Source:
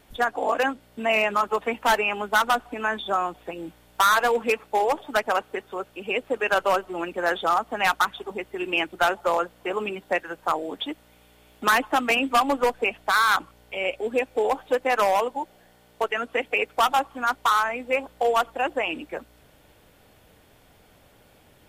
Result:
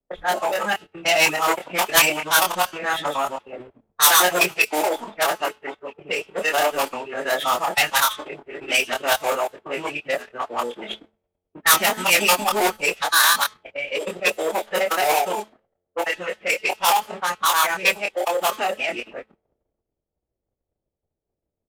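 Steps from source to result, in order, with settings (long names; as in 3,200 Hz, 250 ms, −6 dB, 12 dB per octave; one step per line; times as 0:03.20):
reversed piece by piece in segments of 105 ms
low-shelf EQ 110 Hz +10.5 dB
notch filter 1,400 Hz, Q 6.6
double-tracking delay 25 ms −4 dB
hum removal 287.6 Hz, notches 24
leveller curve on the samples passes 2
phase-vocoder pitch shift with formants kept −5 semitones
low-pass that shuts in the quiet parts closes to 440 Hz, open at −14 dBFS
RIAA equalisation recording
multiband upward and downward expander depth 40%
level −4 dB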